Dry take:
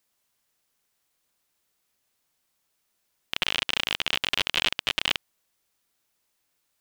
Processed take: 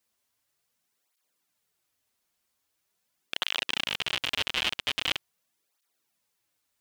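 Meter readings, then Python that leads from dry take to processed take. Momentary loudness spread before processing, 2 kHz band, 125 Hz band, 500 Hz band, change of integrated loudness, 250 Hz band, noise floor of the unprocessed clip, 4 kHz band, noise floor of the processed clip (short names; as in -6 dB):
4 LU, -3.0 dB, -3.0 dB, -3.0 dB, -3.0 dB, -3.0 dB, -76 dBFS, -3.0 dB, -79 dBFS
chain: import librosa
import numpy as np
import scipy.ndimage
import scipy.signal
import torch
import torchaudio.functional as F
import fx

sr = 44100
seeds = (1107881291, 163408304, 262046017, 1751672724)

y = fx.flanger_cancel(x, sr, hz=0.43, depth_ms=7.6)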